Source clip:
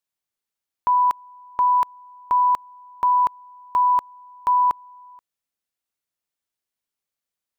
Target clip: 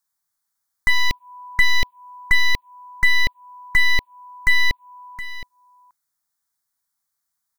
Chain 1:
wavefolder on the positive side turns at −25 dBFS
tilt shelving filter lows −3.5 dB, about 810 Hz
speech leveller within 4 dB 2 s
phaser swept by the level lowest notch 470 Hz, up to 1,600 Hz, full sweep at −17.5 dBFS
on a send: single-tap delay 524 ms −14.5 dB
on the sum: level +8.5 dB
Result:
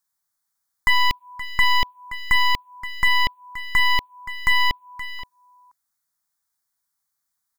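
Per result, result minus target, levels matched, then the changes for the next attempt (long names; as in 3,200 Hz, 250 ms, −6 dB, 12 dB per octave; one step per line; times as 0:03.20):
wavefolder on the positive side: distortion −11 dB; echo 194 ms early
change: wavefolder on the positive side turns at −33.5 dBFS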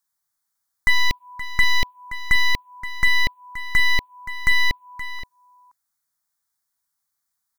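echo 194 ms early
change: single-tap delay 718 ms −14.5 dB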